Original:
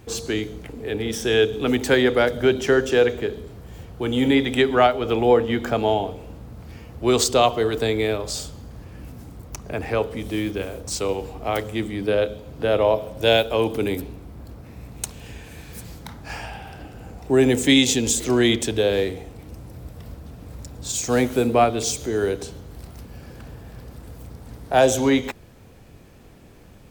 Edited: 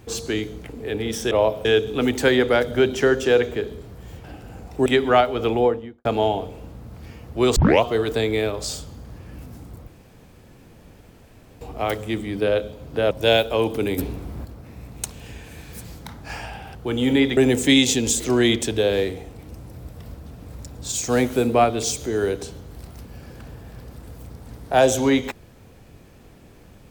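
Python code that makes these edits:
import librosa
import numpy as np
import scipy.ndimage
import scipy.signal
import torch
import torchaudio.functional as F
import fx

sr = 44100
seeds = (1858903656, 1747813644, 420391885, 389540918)

y = fx.studio_fade_out(x, sr, start_s=5.12, length_s=0.59)
y = fx.edit(y, sr, fx.swap(start_s=3.9, length_s=0.62, other_s=16.75, other_length_s=0.62),
    fx.tape_start(start_s=7.22, length_s=0.26),
    fx.room_tone_fill(start_s=9.53, length_s=1.74),
    fx.move(start_s=12.77, length_s=0.34, to_s=1.31),
    fx.clip_gain(start_s=13.98, length_s=0.47, db=6.5), tone=tone)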